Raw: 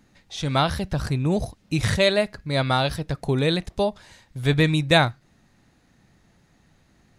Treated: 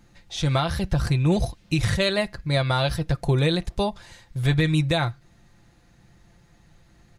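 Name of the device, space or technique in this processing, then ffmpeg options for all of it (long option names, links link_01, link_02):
car stereo with a boomy subwoofer: -filter_complex "[0:a]aecho=1:1:5.8:0.49,asettb=1/sr,asplit=3[link_01][link_02][link_03];[link_01]atrim=end=1.114[link_04];[link_02]atrim=start=1.11:end=1.78,asetpts=PTS-STARTPTS,afade=type=in:duration=0.004:curve=qsin,afade=type=out:start_time=0.666:duration=0.004:curve=qsin,equalizer=frequency=3100:width_type=o:width=1.7:gain=5[link_05];[link_03]atrim=start=1.776[link_06];[link_04][link_05]acrossfade=duration=0.004:curve1=hsin:curve2=qsin[link_07];[link_07][link_06]acrossfade=duration=0.004:curve1=qsin:curve2=hsin,lowshelf=frequency=130:width_type=q:width=1.5:gain=6,alimiter=limit=-13dB:level=0:latency=1:release=236,volume=1dB"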